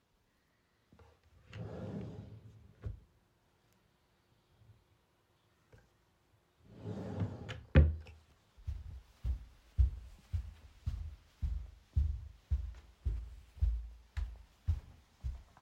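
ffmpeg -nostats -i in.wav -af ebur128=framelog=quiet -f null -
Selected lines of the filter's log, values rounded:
Integrated loudness:
  I:         -39.9 LUFS
  Threshold: -51.2 LUFS
Loudness range:
  LRA:        16.9 LU
  Threshold: -61.5 LUFS
  LRA low:   -53.9 LUFS
  LRA high:  -37.0 LUFS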